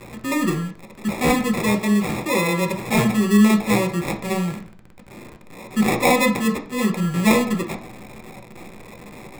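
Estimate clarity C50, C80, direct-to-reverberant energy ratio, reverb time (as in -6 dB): 11.5 dB, 15.5 dB, 3.5 dB, 0.50 s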